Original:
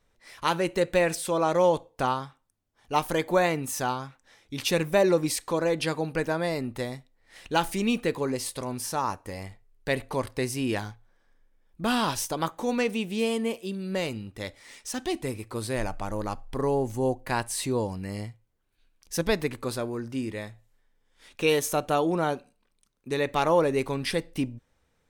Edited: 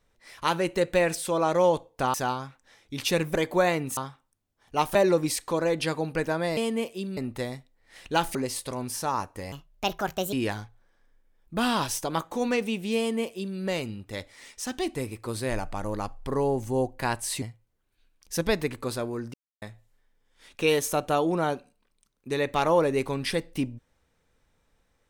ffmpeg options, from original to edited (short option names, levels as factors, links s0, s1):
-filter_complex "[0:a]asplit=13[s0][s1][s2][s3][s4][s5][s6][s7][s8][s9][s10][s11][s12];[s0]atrim=end=2.142[s13];[s1]atrim=start=3.738:end=4.952[s14];[s2]atrim=start=3.118:end=3.742[s15];[s3]atrim=start=2.138:end=3.122[s16];[s4]atrim=start=4.948:end=6.572[s17];[s5]atrim=start=13.248:end=13.852[s18];[s6]atrim=start=6.568:end=7.752[s19];[s7]atrim=start=8.248:end=9.424[s20];[s8]atrim=start=9.42:end=10.6,asetpts=PTS-STARTPTS,asetrate=64386,aresample=44100,atrim=end_sample=35642,asetpts=PTS-STARTPTS[s21];[s9]atrim=start=10.596:end=17.692[s22];[s10]atrim=start=18.218:end=20.14,asetpts=PTS-STARTPTS,afade=t=out:st=1.918:d=0.004:c=hsin[s23];[s11]atrim=start=20.14:end=20.42,asetpts=PTS-STARTPTS,volume=0[s24];[s12]atrim=start=20.42,asetpts=PTS-STARTPTS,afade=t=in:d=0.004:c=hsin[s25];[s13][s14]acrossfade=d=0.004:c1=hsin:c2=hsin[s26];[s26][s15]acrossfade=d=0.004:c1=hsin:c2=hsin[s27];[s27][s16]acrossfade=d=0.004:c1=hsin:c2=hsin[s28];[s28][s17]acrossfade=d=0.004:c1=hsin:c2=hsin[s29];[s29][s18]acrossfade=d=0.004:c1=hsin:c2=hsin[s30];[s30][s19]acrossfade=d=0.004:c1=hsin:c2=hsin[s31];[s31][s20]acrossfade=d=0.004:c1=hsin:c2=hsin[s32];[s32][s21]acrossfade=d=0.004:c1=hsin:c2=hsin[s33];[s33][s22]acrossfade=d=0.004:c1=hsin:c2=hsin[s34];[s23][s24][s25]concat=n=3:v=0:a=1[s35];[s34][s35]acrossfade=d=0.004:c1=hsin:c2=hsin"